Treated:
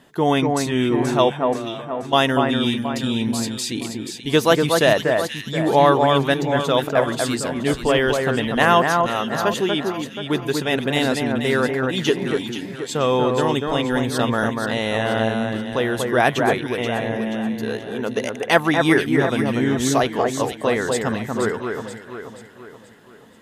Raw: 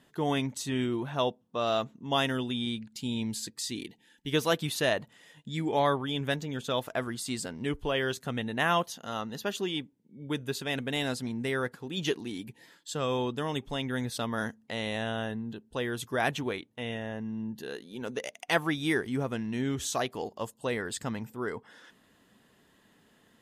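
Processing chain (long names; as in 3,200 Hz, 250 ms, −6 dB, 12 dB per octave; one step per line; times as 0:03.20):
parametric band 650 Hz +4 dB 2.6 octaves
0:01.42–0:02.13: downward compressor, threshold −40 dBFS, peak gain reduction 18 dB
delay that swaps between a low-pass and a high-pass 240 ms, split 2,100 Hz, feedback 66%, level −3.5 dB
level +8 dB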